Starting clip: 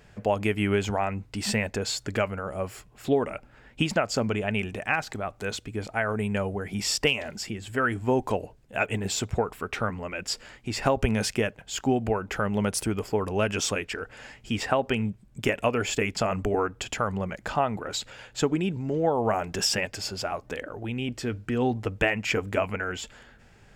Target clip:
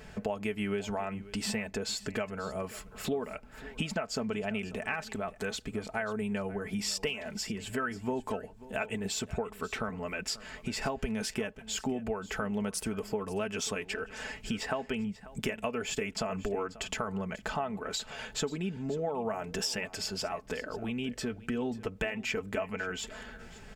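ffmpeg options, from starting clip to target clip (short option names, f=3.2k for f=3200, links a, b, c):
-filter_complex "[0:a]aecho=1:1:4.6:0.54,acompressor=threshold=-40dB:ratio=3,asplit=2[a][b];[b]aecho=0:1:539:0.126[c];[a][c]amix=inputs=2:normalize=0,volume=4.5dB"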